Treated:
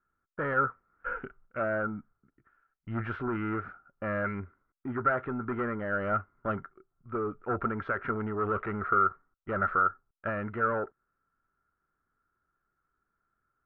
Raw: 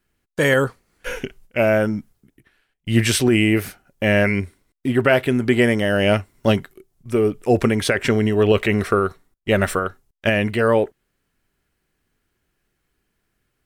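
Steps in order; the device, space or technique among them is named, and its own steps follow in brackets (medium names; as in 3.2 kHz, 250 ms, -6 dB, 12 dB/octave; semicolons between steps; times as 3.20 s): overdriven synthesiser ladder filter (saturation -15 dBFS, distortion -11 dB; four-pole ladder low-pass 1.4 kHz, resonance 85%)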